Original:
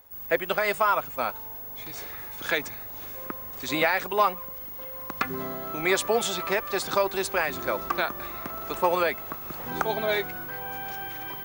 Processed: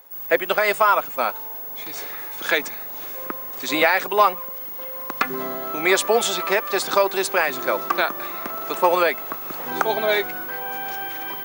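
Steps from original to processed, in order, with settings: HPF 250 Hz 12 dB/oct; gain +6 dB

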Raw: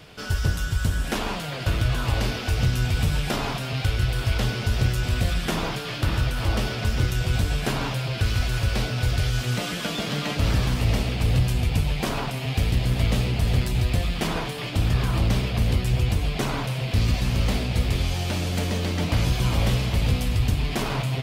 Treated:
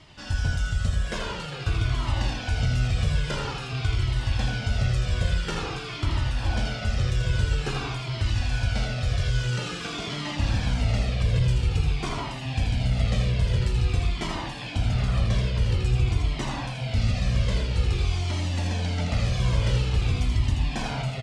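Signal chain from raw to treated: LPF 8400 Hz 24 dB/oct; echo 81 ms -5.5 dB; cascading flanger falling 0.49 Hz

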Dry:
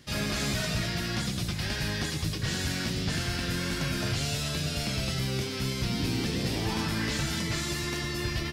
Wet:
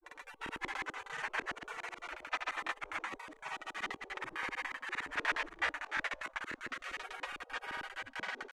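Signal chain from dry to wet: spectral gate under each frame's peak -30 dB weak; LFO low-pass square 8.7 Hz 310–1900 Hz; grains, pitch spread up and down by 0 st; gain +17.5 dB

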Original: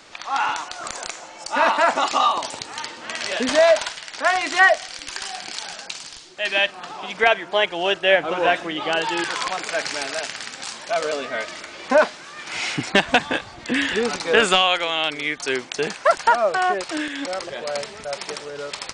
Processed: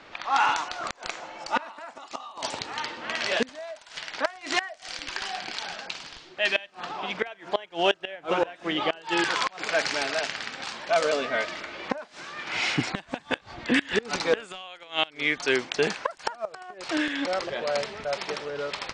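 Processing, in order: low-pass opened by the level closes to 2900 Hz, open at -14 dBFS; flipped gate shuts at -10 dBFS, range -24 dB

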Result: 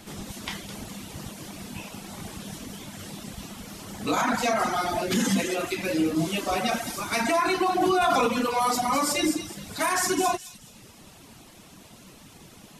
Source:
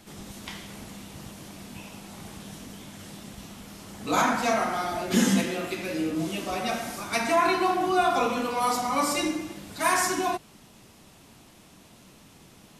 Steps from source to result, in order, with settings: reverb removal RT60 0.78 s; limiter -21 dBFS, peak gain reduction 10.5 dB; on a send: thin delay 0.211 s, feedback 32%, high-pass 4200 Hz, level -5.5 dB; 7.82–8.27 on the sum: fast leveller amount 100%; gain +5.5 dB

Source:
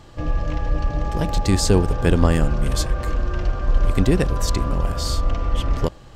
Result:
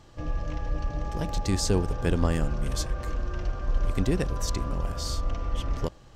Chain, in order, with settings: bell 5900 Hz +4.5 dB 0.35 oct; gain -8 dB

